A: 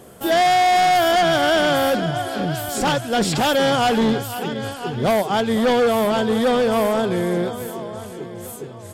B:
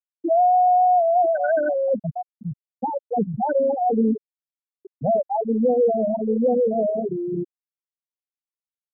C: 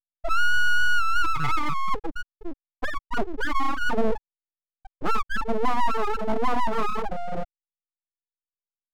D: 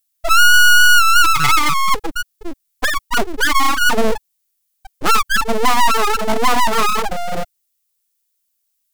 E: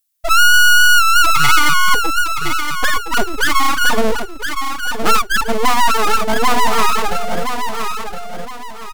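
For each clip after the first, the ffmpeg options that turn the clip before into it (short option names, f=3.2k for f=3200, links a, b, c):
-af "afftfilt=real='re*gte(hypot(re,im),0.708)':imag='im*gte(hypot(re,im),0.708)':win_size=1024:overlap=0.75"
-af "aeval=exprs='abs(val(0))':c=same"
-af "crystalizer=i=8:c=0,volume=6dB"
-af "aecho=1:1:1016|2032|3048|4064:0.447|0.147|0.0486|0.0161"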